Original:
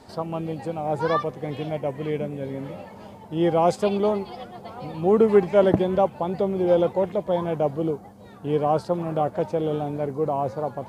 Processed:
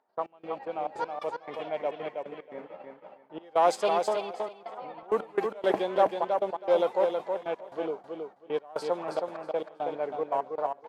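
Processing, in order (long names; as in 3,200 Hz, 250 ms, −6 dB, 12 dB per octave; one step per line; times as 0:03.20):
phase distortion by the signal itself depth 0.063 ms
high-pass filter 590 Hz 12 dB per octave
low-pass that shuts in the quiet parts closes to 1,400 Hz, open at −20.5 dBFS
noise gate −40 dBFS, range −19 dB
upward compression, threshold −37 dBFS
gate pattern "..x..xxxxx.x" 173 BPM −24 dB
on a send: repeating echo 321 ms, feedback 18%, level −5 dB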